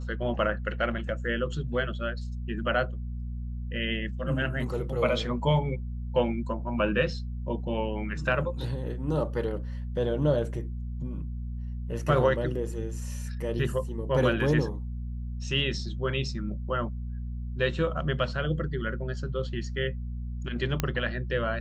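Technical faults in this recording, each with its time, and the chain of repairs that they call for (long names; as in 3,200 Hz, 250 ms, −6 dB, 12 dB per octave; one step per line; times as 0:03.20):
mains hum 60 Hz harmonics 4 −34 dBFS
0:20.80: click −11 dBFS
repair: click removal
hum removal 60 Hz, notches 4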